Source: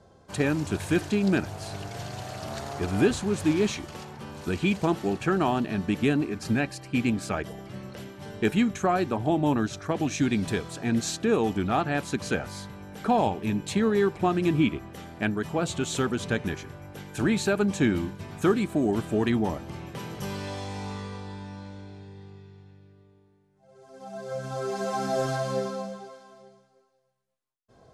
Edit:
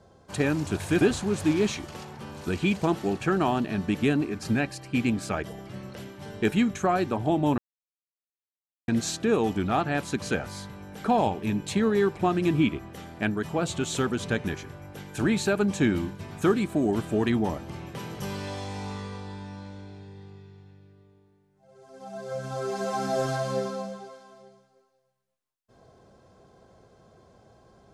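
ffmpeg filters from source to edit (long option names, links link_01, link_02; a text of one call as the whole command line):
ffmpeg -i in.wav -filter_complex "[0:a]asplit=4[link_01][link_02][link_03][link_04];[link_01]atrim=end=1.012[link_05];[link_02]atrim=start=3.008:end=9.58,asetpts=PTS-STARTPTS,afade=type=out:start_time=6.568:duration=0.004:curve=hsin[link_06];[link_03]atrim=start=9.58:end=10.88,asetpts=PTS-STARTPTS,volume=0[link_07];[link_04]atrim=start=10.88,asetpts=PTS-STARTPTS,afade=type=in:duration=0.004:curve=hsin[link_08];[link_06][link_07][link_08]concat=n=3:v=0:a=1[link_09];[link_05][link_09]acrossfade=duration=0.004:curve1=hsin:curve2=hsin" out.wav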